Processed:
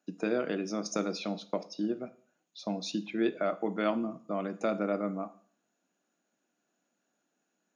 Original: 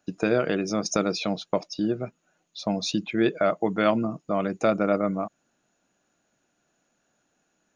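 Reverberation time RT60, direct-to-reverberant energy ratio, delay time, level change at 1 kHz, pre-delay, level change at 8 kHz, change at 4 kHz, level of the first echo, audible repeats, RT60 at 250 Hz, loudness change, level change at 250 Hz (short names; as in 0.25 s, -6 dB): 0.45 s, 12.0 dB, none, -8.0 dB, 6 ms, -8.5 dB, -8.5 dB, none, none, 0.50 s, -7.5 dB, -6.5 dB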